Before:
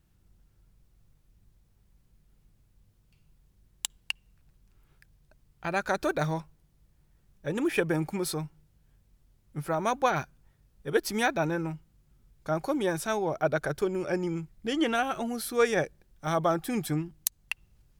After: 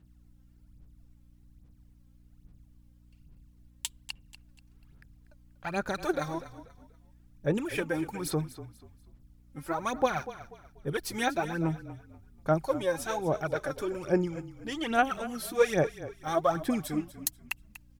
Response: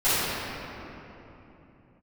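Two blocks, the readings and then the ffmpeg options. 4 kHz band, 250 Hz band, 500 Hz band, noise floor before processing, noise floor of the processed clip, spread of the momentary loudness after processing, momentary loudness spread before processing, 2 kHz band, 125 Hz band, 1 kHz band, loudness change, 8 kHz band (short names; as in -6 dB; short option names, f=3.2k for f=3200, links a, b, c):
-2.5 dB, -1.5 dB, -1.0 dB, -66 dBFS, -59 dBFS, 16 LU, 12 LU, -2.5 dB, -1.0 dB, -1.0 dB, -1.5 dB, -2.5 dB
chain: -filter_complex "[0:a]aphaser=in_gain=1:out_gain=1:delay=3.8:decay=0.69:speed=1.2:type=sinusoidal,aeval=exprs='val(0)+0.00224*(sin(2*PI*60*n/s)+sin(2*PI*2*60*n/s)/2+sin(2*PI*3*60*n/s)/3+sin(2*PI*4*60*n/s)/4+sin(2*PI*5*60*n/s)/5)':c=same,asplit=2[a][b];[b]asplit=3[c][d][e];[c]adelay=242,afreqshift=-32,volume=-14.5dB[f];[d]adelay=484,afreqshift=-64,volume=-24.7dB[g];[e]adelay=726,afreqshift=-96,volume=-34.8dB[h];[f][g][h]amix=inputs=3:normalize=0[i];[a][i]amix=inputs=2:normalize=0,volume=-5dB"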